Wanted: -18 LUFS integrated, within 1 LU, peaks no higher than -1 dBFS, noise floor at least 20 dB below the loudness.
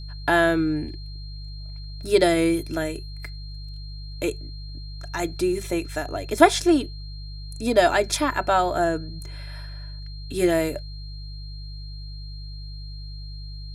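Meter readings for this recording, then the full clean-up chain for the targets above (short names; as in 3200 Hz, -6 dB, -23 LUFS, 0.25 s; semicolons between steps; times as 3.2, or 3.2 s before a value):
hum 50 Hz; harmonics up to 150 Hz; hum level -33 dBFS; steady tone 4200 Hz; tone level -44 dBFS; loudness -23.0 LUFS; peak -1.0 dBFS; loudness target -18.0 LUFS
-> de-hum 50 Hz, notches 3; notch 4200 Hz, Q 30; gain +5 dB; limiter -1 dBFS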